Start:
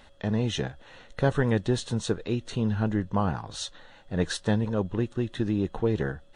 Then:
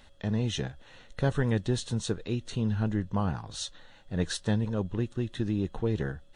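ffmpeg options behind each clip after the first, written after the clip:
-af "equalizer=f=770:w=0.32:g=-5.5"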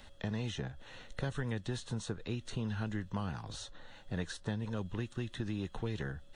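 -filter_complex "[0:a]acrossover=split=260|770|1600[a][b][c][d];[a]acompressor=threshold=-39dB:ratio=4[e];[b]acompressor=threshold=-47dB:ratio=4[f];[c]acompressor=threshold=-51dB:ratio=4[g];[d]acompressor=threshold=-49dB:ratio=4[h];[e][f][g][h]amix=inputs=4:normalize=0,volume=1.5dB"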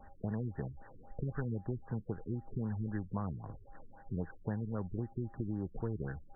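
-af "aeval=exprs='val(0)+0.00112*sin(2*PI*800*n/s)':c=same,afftfilt=real='re*lt(b*sr/1024,420*pow(2000/420,0.5+0.5*sin(2*PI*3.8*pts/sr)))':imag='im*lt(b*sr/1024,420*pow(2000/420,0.5+0.5*sin(2*PI*3.8*pts/sr)))':win_size=1024:overlap=0.75"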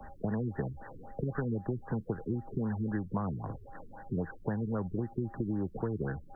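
-filter_complex "[0:a]acrossover=split=95|190|1300[a][b][c][d];[a]acompressor=threshold=-57dB:ratio=4[e];[b]acompressor=threshold=-48dB:ratio=4[f];[c]acompressor=threshold=-41dB:ratio=4[g];[d]acompressor=threshold=-56dB:ratio=4[h];[e][f][g][h]amix=inputs=4:normalize=0,volume=9dB"

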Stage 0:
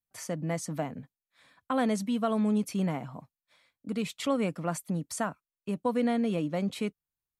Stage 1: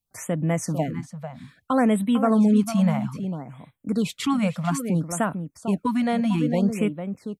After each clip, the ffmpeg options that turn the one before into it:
-filter_complex "[0:a]lowshelf=f=180:g=6.5,asplit=2[a][b];[b]adelay=449,volume=-9dB,highshelf=f=4k:g=-10.1[c];[a][c]amix=inputs=2:normalize=0,afftfilt=real='re*(1-between(b*sr/1024,320*pow(5800/320,0.5+0.5*sin(2*PI*0.61*pts/sr))/1.41,320*pow(5800/320,0.5+0.5*sin(2*PI*0.61*pts/sr))*1.41))':imag='im*(1-between(b*sr/1024,320*pow(5800/320,0.5+0.5*sin(2*PI*0.61*pts/sr))/1.41,320*pow(5800/320,0.5+0.5*sin(2*PI*0.61*pts/sr))*1.41))':win_size=1024:overlap=0.75,volume=6dB"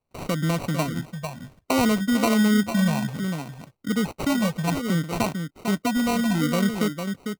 -filter_complex "[0:a]asplit=2[a][b];[b]acompressor=threshold=-27dB:ratio=6,volume=0.5dB[c];[a][c]amix=inputs=2:normalize=0,acrusher=samples=26:mix=1:aa=0.000001,volume=-3.5dB"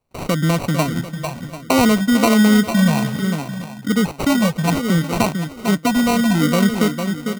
-af "aecho=1:1:743:0.188,volume=6.5dB"

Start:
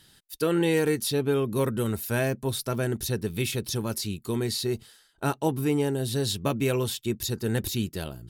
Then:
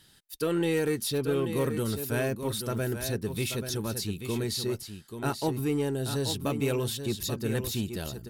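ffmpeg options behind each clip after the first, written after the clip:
-filter_complex "[0:a]asplit=2[a][b];[b]asoftclip=type=hard:threshold=-26.5dB,volume=-8dB[c];[a][c]amix=inputs=2:normalize=0,aecho=1:1:834:0.376,volume=-5dB"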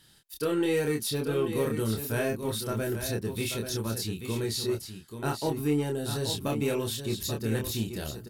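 -filter_complex "[0:a]asplit=2[a][b];[b]adelay=27,volume=-3.5dB[c];[a][c]amix=inputs=2:normalize=0,volume=-1.5dB"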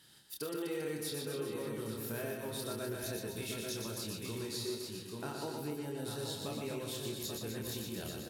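-af "acompressor=threshold=-36dB:ratio=6,highpass=f=150:p=1,aecho=1:1:120|252|397.2|556.9|732.6:0.631|0.398|0.251|0.158|0.1,volume=-2dB"

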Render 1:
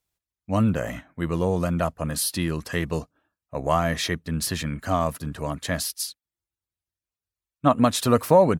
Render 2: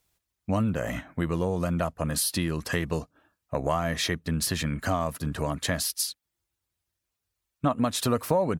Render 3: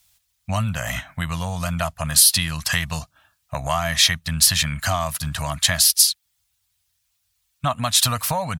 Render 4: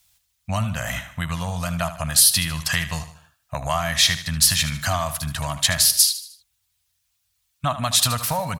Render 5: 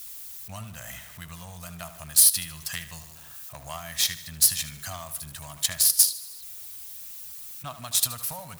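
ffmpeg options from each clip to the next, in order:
-af "acompressor=threshold=-35dB:ratio=3,volume=8dB"
-af "firequalizer=gain_entry='entry(120,0);entry(380,-26);entry(660,-2);entry(3300,8)':delay=0.05:min_phase=1,volume=6dB"
-af "aecho=1:1:76|152|228|304:0.237|0.104|0.0459|0.0202,volume=-1dB"
-af "aeval=exprs='val(0)+0.5*0.0422*sgn(val(0))':c=same,aeval=exprs='0.841*(cos(1*acos(clip(val(0)/0.841,-1,1)))-cos(1*PI/2))+0.0944*(cos(3*acos(clip(val(0)/0.841,-1,1)))-cos(3*PI/2))+0.0422*(cos(7*acos(clip(val(0)/0.841,-1,1)))-cos(7*PI/2))':c=same,aemphasis=mode=production:type=50kf,volume=-9.5dB"

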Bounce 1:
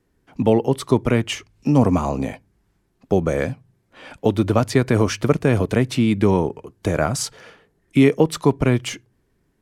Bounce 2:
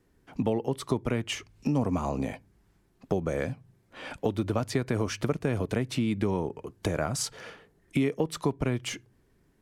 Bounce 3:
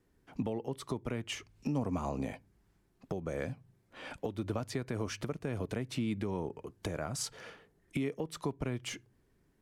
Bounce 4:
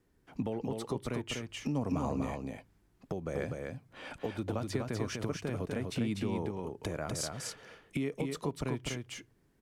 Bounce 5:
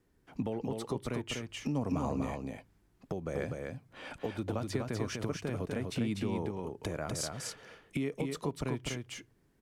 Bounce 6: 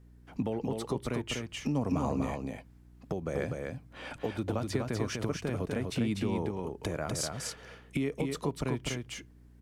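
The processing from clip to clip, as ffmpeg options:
-af "acompressor=threshold=-29dB:ratio=2.5"
-af "alimiter=limit=-18.5dB:level=0:latency=1:release=303,volume=-5dB"
-af "aecho=1:1:247:0.631"
-af anull
-af "aeval=exprs='val(0)+0.00141*(sin(2*PI*60*n/s)+sin(2*PI*2*60*n/s)/2+sin(2*PI*3*60*n/s)/3+sin(2*PI*4*60*n/s)/4+sin(2*PI*5*60*n/s)/5)':c=same,volume=2.5dB"

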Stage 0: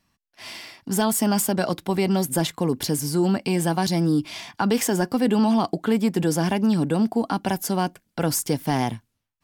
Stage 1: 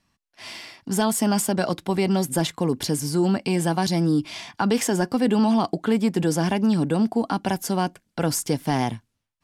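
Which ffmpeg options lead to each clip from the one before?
-af "lowpass=11k"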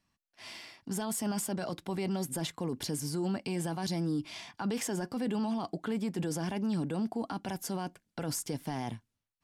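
-af "alimiter=limit=-17dB:level=0:latency=1:release=12,volume=-8.5dB"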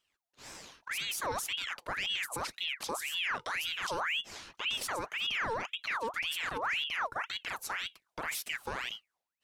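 -af "aeval=exprs='val(0)*sin(2*PI*1900*n/s+1900*0.65/1.9*sin(2*PI*1.9*n/s))':c=same,volume=1dB"

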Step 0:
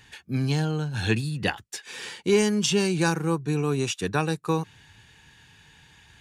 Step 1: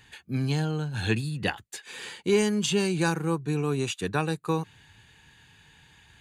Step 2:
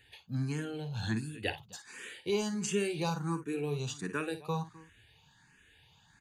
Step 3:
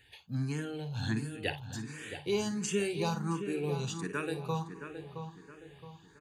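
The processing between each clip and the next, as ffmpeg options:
-af "bandreject=f=5.5k:w=5.4,volume=-2dB"
-filter_complex "[0:a]asplit=2[a][b];[b]aecho=0:1:46|55|257:0.106|0.266|0.1[c];[a][c]amix=inputs=2:normalize=0,asplit=2[d][e];[e]afreqshift=1.4[f];[d][f]amix=inputs=2:normalize=1,volume=-4.5dB"
-filter_complex "[0:a]asplit=2[a][b];[b]adelay=669,lowpass=f=2k:p=1,volume=-8dB,asplit=2[c][d];[d]adelay=669,lowpass=f=2k:p=1,volume=0.41,asplit=2[e][f];[f]adelay=669,lowpass=f=2k:p=1,volume=0.41,asplit=2[g][h];[h]adelay=669,lowpass=f=2k:p=1,volume=0.41,asplit=2[i][j];[j]adelay=669,lowpass=f=2k:p=1,volume=0.41[k];[a][c][e][g][i][k]amix=inputs=6:normalize=0"

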